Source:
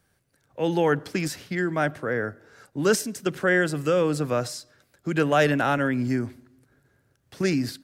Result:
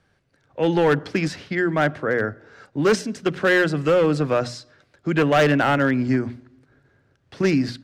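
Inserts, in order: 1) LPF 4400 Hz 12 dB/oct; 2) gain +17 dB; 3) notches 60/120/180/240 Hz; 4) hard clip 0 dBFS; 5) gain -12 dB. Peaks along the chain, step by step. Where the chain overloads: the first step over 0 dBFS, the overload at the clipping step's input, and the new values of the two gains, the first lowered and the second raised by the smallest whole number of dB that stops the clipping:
-8.5, +8.5, +8.5, 0.0, -12.0 dBFS; step 2, 8.5 dB; step 2 +8 dB, step 5 -3 dB

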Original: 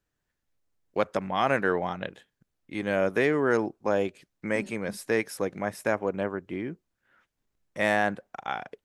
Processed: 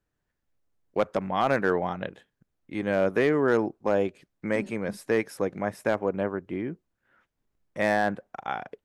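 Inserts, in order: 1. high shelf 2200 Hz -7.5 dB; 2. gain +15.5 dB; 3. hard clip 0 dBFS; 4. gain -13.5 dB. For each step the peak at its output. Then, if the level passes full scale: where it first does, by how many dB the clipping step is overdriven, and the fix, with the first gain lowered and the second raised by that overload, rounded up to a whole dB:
-11.5, +4.0, 0.0, -13.5 dBFS; step 2, 4.0 dB; step 2 +11.5 dB, step 4 -9.5 dB

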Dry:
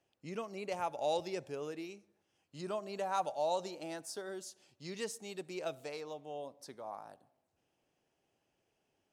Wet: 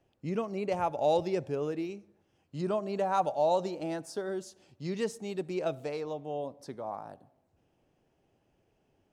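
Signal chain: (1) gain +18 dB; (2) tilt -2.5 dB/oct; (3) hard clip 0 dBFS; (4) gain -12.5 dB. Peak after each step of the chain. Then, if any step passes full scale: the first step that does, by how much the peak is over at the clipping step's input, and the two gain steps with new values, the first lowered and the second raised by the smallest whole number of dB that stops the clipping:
-4.0, -3.5, -3.5, -16.0 dBFS; no overload

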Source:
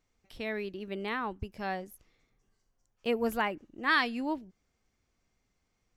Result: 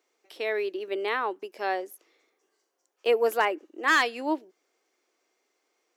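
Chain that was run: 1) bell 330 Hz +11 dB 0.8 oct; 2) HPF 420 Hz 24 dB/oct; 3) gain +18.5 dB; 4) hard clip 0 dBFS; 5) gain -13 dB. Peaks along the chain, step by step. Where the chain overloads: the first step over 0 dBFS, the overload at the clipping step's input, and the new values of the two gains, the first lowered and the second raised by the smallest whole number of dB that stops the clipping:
-14.0, -13.5, +5.0, 0.0, -13.0 dBFS; step 3, 5.0 dB; step 3 +13.5 dB, step 5 -8 dB

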